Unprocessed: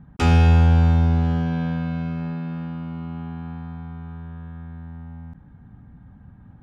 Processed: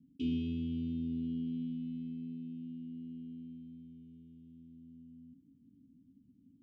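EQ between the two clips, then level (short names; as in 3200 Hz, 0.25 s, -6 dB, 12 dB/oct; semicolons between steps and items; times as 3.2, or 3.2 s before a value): vowel filter i; Chebyshev band-stop 440–2700 Hz, order 5; high shelf 4300 Hz -9 dB; -2.5 dB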